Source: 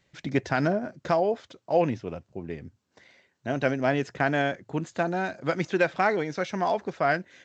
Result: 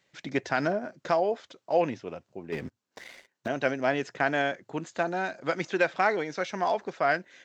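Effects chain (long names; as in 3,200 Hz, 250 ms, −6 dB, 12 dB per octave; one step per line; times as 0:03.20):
high-pass filter 360 Hz 6 dB per octave
0:02.52–0:03.48: leveller curve on the samples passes 3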